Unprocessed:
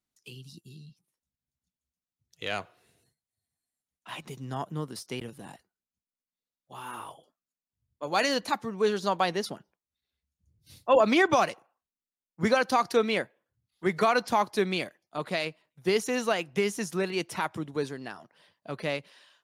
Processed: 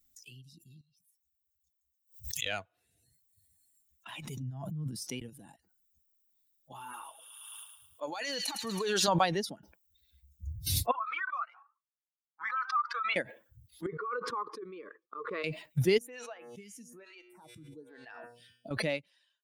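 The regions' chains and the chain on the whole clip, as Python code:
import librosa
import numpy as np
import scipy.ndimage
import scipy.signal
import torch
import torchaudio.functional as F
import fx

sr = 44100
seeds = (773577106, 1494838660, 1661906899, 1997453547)

y = fx.chain(x, sr, fx.tone_stack(knobs='5-5-5'),
    fx.notch(hz=1500.0, q=9.3),
    fx.pre_swell(db_per_s=140.0), at=(0.81, 2.46))
y = fx.chain(y, sr, fx.over_compress(threshold_db=-45.0, ratio=-1.0),
    fx.peak_eq(hz=150.0, db=11.5, octaves=0.93), at=(4.42, 5.05))
y = fx.chain(y, sr, fx.highpass(hz=580.0, slope=6),
    fx.over_compress(threshold_db=-33.0, ratio=-1.0),
    fx.echo_wet_highpass(ms=108, feedback_pct=60, hz=2500.0, wet_db=-5.0), at=(6.93, 9.08))
y = fx.chain(y, sr, fx.ladder_bandpass(hz=1300.0, resonance_pct=80),
    fx.comb_cascade(direction='rising', hz=1.2), at=(10.91, 13.16))
y = fx.chain(y, sr, fx.double_bandpass(hz=710.0, octaves=1.4),
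    fx.over_compress(threshold_db=-33.0, ratio=-1.0), at=(13.86, 15.44))
y = fx.chain(y, sr, fx.comb_fb(f0_hz=120.0, decay_s=1.2, harmonics='all', damping=0.0, mix_pct=80),
    fx.stagger_phaser(hz=1.1), at=(15.98, 18.71))
y = fx.bin_expand(y, sr, power=1.5)
y = fx.pre_swell(y, sr, db_per_s=25.0)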